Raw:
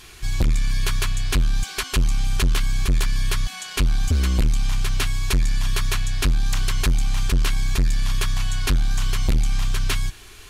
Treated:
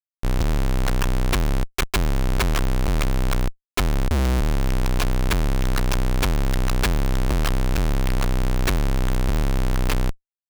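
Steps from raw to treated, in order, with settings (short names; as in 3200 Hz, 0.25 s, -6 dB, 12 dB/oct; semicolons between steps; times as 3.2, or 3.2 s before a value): added harmonics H 8 -10 dB, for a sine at -14.5 dBFS; Schmitt trigger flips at -20.5 dBFS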